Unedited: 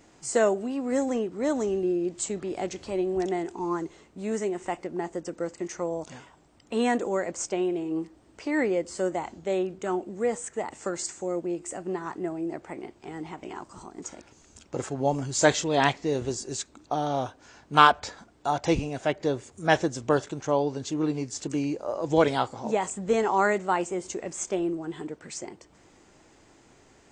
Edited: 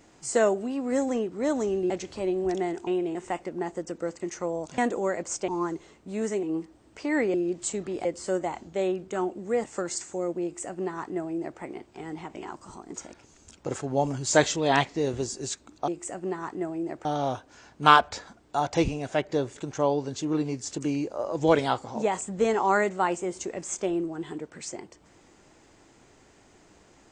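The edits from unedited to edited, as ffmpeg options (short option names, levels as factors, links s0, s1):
-filter_complex "[0:a]asplit=13[s0][s1][s2][s3][s4][s5][s6][s7][s8][s9][s10][s11][s12];[s0]atrim=end=1.902[s13];[s1]atrim=start=2.608:end=3.582[s14];[s2]atrim=start=7.568:end=7.852[s15];[s3]atrim=start=4.528:end=6.162[s16];[s4]atrim=start=6.868:end=7.572[s17];[s5]atrim=start=3.578:end=4.532[s18];[s6]atrim=start=7.848:end=8.762[s19];[s7]atrim=start=1.898:end=2.612[s20];[s8]atrim=start=8.758:end=10.352[s21];[s9]atrim=start=10.718:end=16.962[s22];[s10]atrim=start=11.508:end=12.682[s23];[s11]atrim=start=16.958:end=19.472[s24];[s12]atrim=start=20.248[s25];[s13][s14]acrossfade=d=0.004:c1=hsin:c2=hsin[s26];[s26][s15]acrossfade=d=0.004:c1=hsin:c2=hsin[s27];[s27][s16]acrossfade=d=0.004:c1=hsin:c2=hsin[s28];[s28][s17]acrossfade=d=0.004:c1=hsin:c2=hsin[s29];[s29][s18]acrossfade=d=0.004:c1=hsin:c2=hsin[s30];[s30][s19]acrossfade=d=0.004:c1=hsin:c2=hsin[s31];[s31][s20]acrossfade=d=0.004:c1=hsin:c2=hsin[s32];[s32][s21]acrossfade=d=0.004:c1=hsin:c2=hsin[s33];[s33][s22]acrossfade=d=0.004:c1=hsin:c2=hsin[s34];[s34][s23]acrossfade=d=0.004:c1=hsin:c2=hsin[s35];[s35][s24]acrossfade=d=0.004:c1=hsin:c2=hsin[s36];[s36][s25]acrossfade=d=0.004:c1=hsin:c2=hsin"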